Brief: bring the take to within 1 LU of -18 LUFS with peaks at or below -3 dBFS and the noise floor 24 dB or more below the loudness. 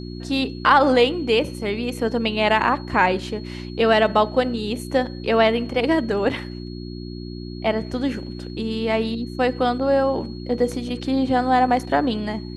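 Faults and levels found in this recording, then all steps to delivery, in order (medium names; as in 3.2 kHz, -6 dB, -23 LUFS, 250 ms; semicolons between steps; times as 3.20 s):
hum 60 Hz; highest harmonic 360 Hz; hum level -30 dBFS; steady tone 4.3 kHz; tone level -44 dBFS; loudness -21.0 LUFS; peak level -3.0 dBFS; loudness target -18.0 LUFS
-> de-hum 60 Hz, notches 6; band-stop 4.3 kHz, Q 30; trim +3 dB; peak limiter -3 dBFS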